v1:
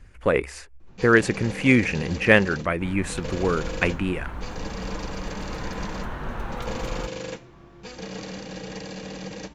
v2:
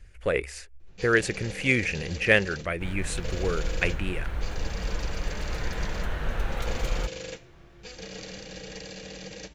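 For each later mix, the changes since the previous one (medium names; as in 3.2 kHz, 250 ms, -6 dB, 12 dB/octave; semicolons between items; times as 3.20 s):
second sound +5.5 dB; master: add ten-band graphic EQ 125 Hz -4 dB, 250 Hz -10 dB, 1 kHz -11 dB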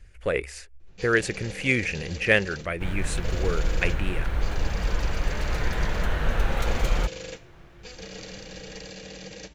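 second sound +5.0 dB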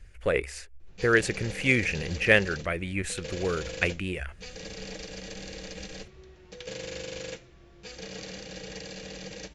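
second sound: muted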